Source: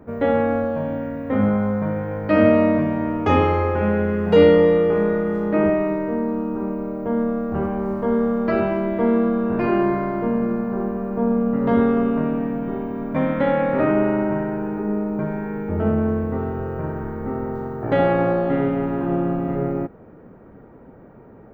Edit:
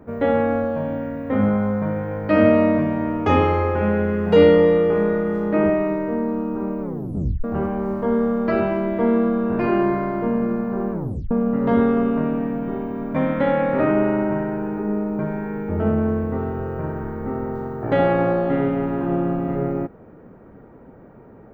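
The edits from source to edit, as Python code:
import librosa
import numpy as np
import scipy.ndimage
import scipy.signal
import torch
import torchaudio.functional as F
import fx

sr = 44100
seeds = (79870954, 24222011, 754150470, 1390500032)

y = fx.edit(x, sr, fx.tape_stop(start_s=6.81, length_s=0.63),
    fx.tape_stop(start_s=10.92, length_s=0.39), tone=tone)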